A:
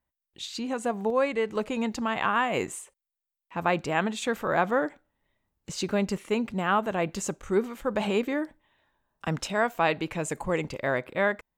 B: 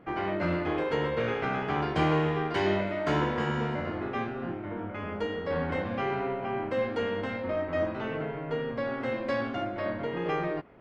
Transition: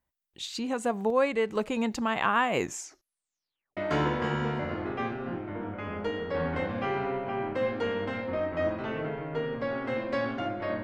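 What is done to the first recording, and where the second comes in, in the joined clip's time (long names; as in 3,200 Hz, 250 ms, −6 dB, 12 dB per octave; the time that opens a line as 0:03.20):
A
0:02.59: tape stop 1.18 s
0:03.77: continue with B from 0:02.93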